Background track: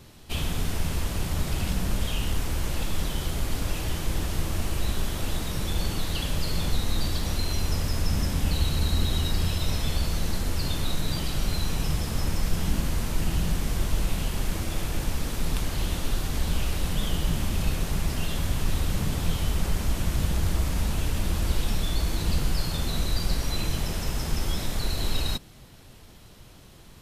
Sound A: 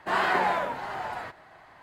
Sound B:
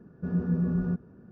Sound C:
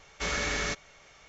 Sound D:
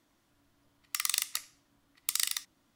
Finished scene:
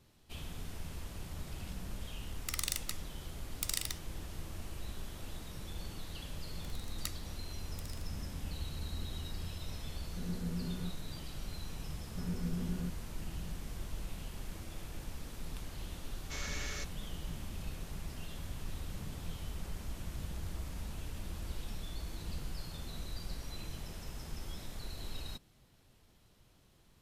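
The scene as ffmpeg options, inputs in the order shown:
-filter_complex "[4:a]asplit=2[a][b];[2:a]asplit=2[c][d];[0:a]volume=-16dB[e];[b]aeval=exprs='val(0)*pow(10,-29*if(lt(mod(0.78*n/s,1),2*abs(0.78)/1000),1-mod(0.78*n/s,1)/(2*abs(0.78)/1000),(mod(0.78*n/s,1)-2*abs(0.78)/1000)/(1-2*abs(0.78)/1000))/20)':c=same[f];[3:a]highshelf=f=3.5k:g=8.5[g];[a]atrim=end=2.75,asetpts=PTS-STARTPTS,volume=-6dB,afade=t=in:d=0.004:c=hsin,afade=t=out:st=2.746:d=0.004:c=hsin,adelay=1540[h];[f]atrim=end=2.75,asetpts=PTS-STARTPTS,volume=-4dB,afade=t=in:d=0.004:c=hsin,afade=t=out:st=2.746:d=0.004:c=hsin,adelay=5700[i];[c]atrim=end=1.31,asetpts=PTS-STARTPTS,volume=-12.5dB,afade=t=in:d=0.004:c=hsin,afade=t=out:st=1.306:d=0.004:c=hsin,adelay=438354S[j];[d]atrim=end=1.31,asetpts=PTS-STARTPTS,volume=-11.5dB,afade=t=in:d=0.004:c=hsin,afade=t=out:st=1.306:d=0.004:c=hsin,adelay=11940[k];[g]atrim=end=1.28,asetpts=PTS-STARTPTS,volume=-14.5dB,afade=t=in:d=0.004:c=hsin,afade=t=out:st=1.276:d=0.004:c=hsin,adelay=16100[l];[e][h][i][j][k][l]amix=inputs=6:normalize=0"

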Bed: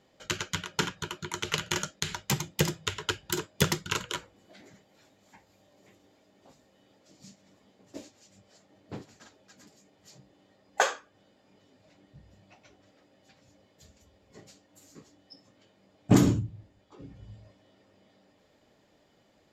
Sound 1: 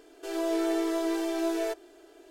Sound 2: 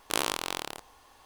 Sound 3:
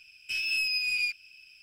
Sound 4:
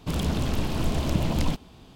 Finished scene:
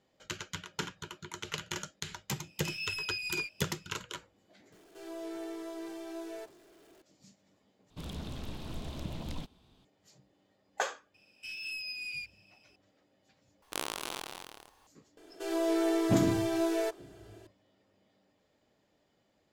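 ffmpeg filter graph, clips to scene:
-filter_complex "[3:a]asplit=2[a][b];[1:a]asplit=2[c][d];[0:a]volume=-8dB[e];[a]asplit=2[f][g];[g]adelay=20,volume=-2.5dB[h];[f][h]amix=inputs=2:normalize=0[i];[c]aeval=exprs='val(0)+0.5*0.00562*sgn(val(0))':c=same[j];[4:a]equalizer=f=3.7k:t=o:w=0.36:g=6[k];[2:a]aecho=1:1:201.2|277:0.282|0.447[l];[e]asplit=3[m][n][o];[m]atrim=end=7.904[p];[k]atrim=end=1.95,asetpts=PTS-STARTPTS,volume=-15dB[q];[n]atrim=start=9.846:end=13.624[r];[l]atrim=end=1.25,asetpts=PTS-STARTPTS,volume=-8dB[s];[o]atrim=start=14.866[t];[i]atrim=end=1.62,asetpts=PTS-STARTPTS,volume=-10dB,afade=t=in:d=0.004:c=hsin,afade=t=out:st=1.616:d=0.004:c=hsin,adelay=2350[u];[j]atrim=end=2.3,asetpts=PTS-STARTPTS,volume=-13.5dB,afade=t=in:d=0.004:c=hsin,afade=t=out:st=2.296:d=0.004:c=hsin,adelay=4720[v];[b]atrim=end=1.62,asetpts=PTS-STARTPTS,volume=-11dB,afade=t=in:d=0.004:c=hsin,afade=t=out:st=1.616:d=0.004:c=hsin,adelay=491274S[w];[d]atrim=end=2.3,asetpts=PTS-STARTPTS,volume=-1dB,afade=t=in:d=0.004:c=hsin,afade=t=out:st=2.296:d=0.004:c=hsin,adelay=15170[x];[p][q]acrossfade=d=0.004:c1=hsin:c2=hsin[y];[y][r]acrossfade=d=0.004:c1=hsin:c2=hsin[z];[z][s]acrossfade=d=0.004:c1=hsin:c2=hsin[aa];[aa][t]acrossfade=d=0.004:c1=hsin:c2=hsin[ab];[ab][u][v][w][x]amix=inputs=5:normalize=0"

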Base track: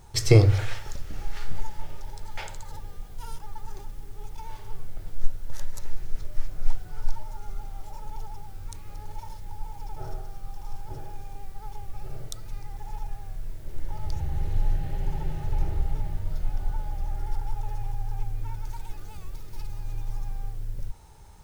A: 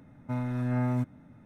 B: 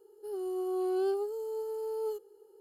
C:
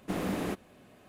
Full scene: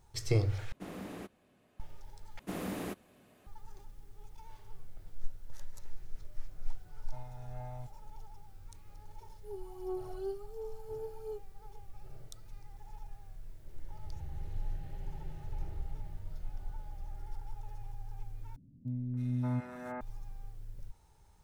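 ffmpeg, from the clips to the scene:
-filter_complex "[3:a]asplit=2[a][b];[1:a]asplit=2[c][d];[0:a]volume=-13dB[e];[b]highshelf=f=8.8k:g=7.5[f];[c]firequalizer=gain_entry='entry(120,0);entry(320,-28);entry(500,-2);entry(730,9);entry(1200,-9);entry(3300,2)':delay=0.05:min_phase=1[g];[2:a]aphaser=in_gain=1:out_gain=1:delay=2.4:decay=0.69:speed=1.4:type=sinusoidal[h];[d]acrossover=split=320|2600[i][j][k];[k]adelay=320[l];[j]adelay=580[m];[i][m][l]amix=inputs=3:normalize=0[n];[e]asplit=4[o][p][q][r];[o]atrim=end=0.724[s];[a]atrim=end=1.08,asetpts=PTS-STARTPTS,volume=-11.5dB[t];[p]atrim=start=1.796:end=2.394[u];[f]atrim=end=1.08,asetpts=PTS-STARTPTS,volume=-6dB[v];[q]atrim=start=3.466:end=18.564[w];[n]atrim=end=1.45,asetpts=PTS-STARTPTS,volume=-4dB[x];[r]atrim=start=20.006[y];[g]atrim=end=1.45,asetpts=PTS-STARTPTS,volume=-15dB,afade=t=in:d=0.004:c=hsin,afade=t=out:st=1.446:d=0.004:c=hsin,adelay=6830[z];[h]atrim=end=2.6,asetpts=PTS-STARTPTS,volume=-13.5dB,afade=t=in:d=0.004:c=hsin,afade=t=out:st=2.596:d=0.004:c=hsin,adelay=9200[aa];[s][t]acrossfade=d=0.004:c1=hsin:c2=hsin[ab];[ab][u]acrossfade=d=0.004:c1=hsin:c2=hsin[ac];[ac][v]acrossfade=d=0.004:c1=hsin:c2=hsin[ad];[ad][w]acrossfade=d=0.004:c1=hsin:c2=hsin[ae];[ae][x]acrossfade=d=0.004:c1=hsin:c2=hsin[af];[af][y]acrossfade=d=0.004:c1=hsin:c2=hsin[ag];[ag][z][aa]amix=inputs=3:normalize=0"

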